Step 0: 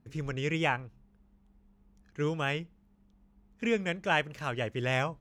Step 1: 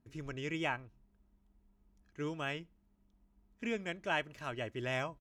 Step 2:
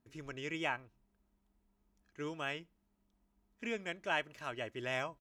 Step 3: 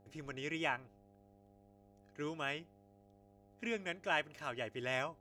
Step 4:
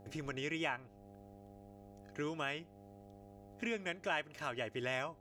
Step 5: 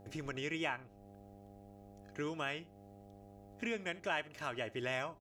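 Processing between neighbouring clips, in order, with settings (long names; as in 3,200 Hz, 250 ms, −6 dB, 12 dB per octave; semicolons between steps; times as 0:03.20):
comb filter 3.1 ms, depth 34%; level −7 dB
low-shelf EQ 230 Hz −8.5 dB
hum with harmonics 100 Hz, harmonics 8, −66 dBFS −2 dB per octave
downward compressor 2 to 1, threshold −51 dBFS, peak gain reduction 12 dB; level +9 dB
single-tap delay 71 ms −21.5 dB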